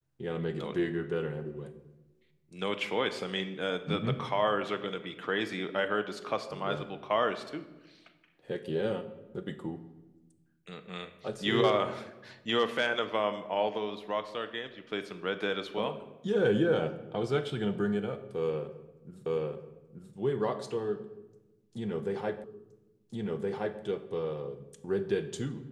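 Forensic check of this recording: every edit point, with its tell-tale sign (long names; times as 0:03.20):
0:19.26: the same again, the last 0.88 s
0:22.44: the same again, the last 1.37 s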